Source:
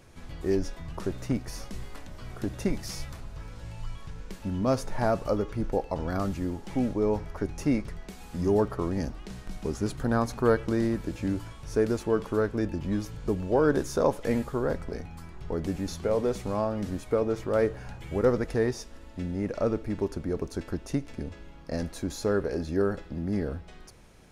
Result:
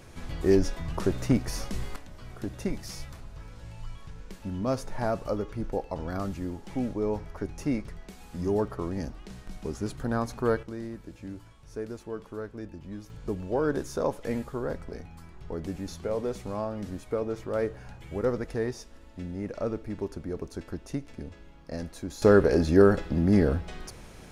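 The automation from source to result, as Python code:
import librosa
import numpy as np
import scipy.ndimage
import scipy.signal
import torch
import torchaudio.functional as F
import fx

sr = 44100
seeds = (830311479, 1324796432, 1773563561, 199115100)

y = fx.gain(x, sr, db=fx.steps((0.0, 5.0), (1.96, -3.0), (10.63, -11.0), (13.1, -4.0), (22.22, 8.0)))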